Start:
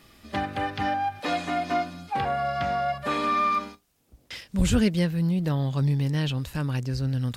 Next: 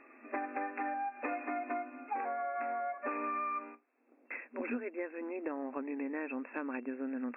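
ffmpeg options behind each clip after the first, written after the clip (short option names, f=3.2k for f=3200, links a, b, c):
-af "afftfilt=real='re*between(b*sr/4096,230,2700)':imag='im*between(b*sr/4096,230,2700)':win_size=4096:overlap=0.75,acompressor=threshold=-34dB:ratio=10"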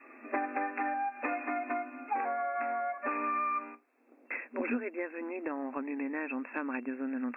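-af "adynamicequalizer=threshold=0.00224:dfrequency=450:dqfactor=1.2:tfrequency=450:tqfactor=1.2:attack=5:release=100:ratio=0.375:range=3:mode=cutabove:tftype=bell,volume=5dB"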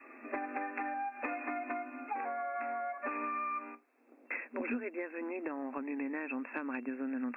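-filter_complex "[0:a]acrossover=split=190|3000[a][b][c];[b]acompressor=threshold=-35dB:ratio=6[d];[a][d][c]amix=inputs=3:normalize=0"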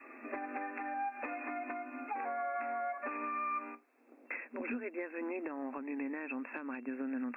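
-af "alimiter=level_in=6dB:limit=-24dB:level=0:latency=1:release=253,volume=-6dB,volume=1dB"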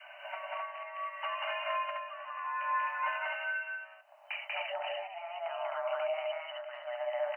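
-af "tremolo=f=0.69:d=0.69,afreqshift=340,aecho=1:1:189.5|259.5:1|0.794,volume=2dB"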